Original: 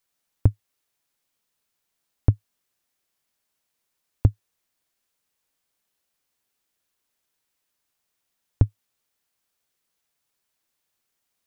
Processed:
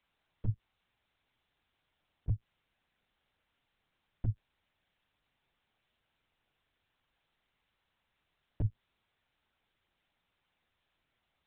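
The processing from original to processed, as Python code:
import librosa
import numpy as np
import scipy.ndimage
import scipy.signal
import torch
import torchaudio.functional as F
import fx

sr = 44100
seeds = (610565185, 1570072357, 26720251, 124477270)

y = fx.over_compress(x, sr, threshold_db=-24.0, ratio=-1.0)
y = fx.lpc_vocoder(y, sr, seeds[0], excitation='pitch_kept', order=10)
y = y * librosa.db_to_amplitude(-4.0)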